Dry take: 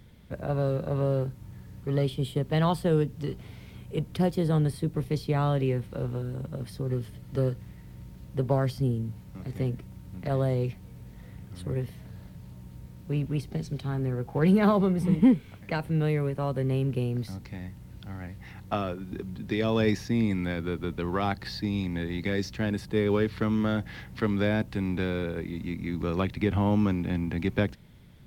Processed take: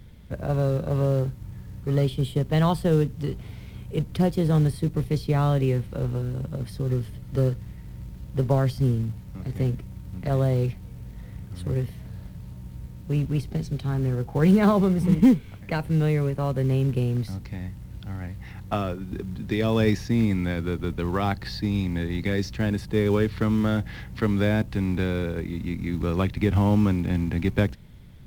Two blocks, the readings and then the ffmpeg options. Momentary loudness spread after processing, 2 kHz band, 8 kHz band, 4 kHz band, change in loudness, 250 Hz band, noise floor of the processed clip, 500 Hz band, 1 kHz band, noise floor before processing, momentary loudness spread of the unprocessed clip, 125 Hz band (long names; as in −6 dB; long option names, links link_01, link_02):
16 LU, +2.0 dB, can't be measured, +2.0 dB, +3.5 dB, +3.5 dB, −42 dBFS, +2.0 dB, +2.0 dB, −48 dBFS, 18 LU, +5.0 dB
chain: -filter_complex "[0:a]lowshelf=frequency=92:gain=9.5,asplit=2[link_01][link_02];[link_02]acrusher=bits=4:mode=log:mix=0:aa=0.000001,volume=-8.5dB[link_03];[link_01][link_03]amix=inputs=2:normalize=0,volume=-1dB"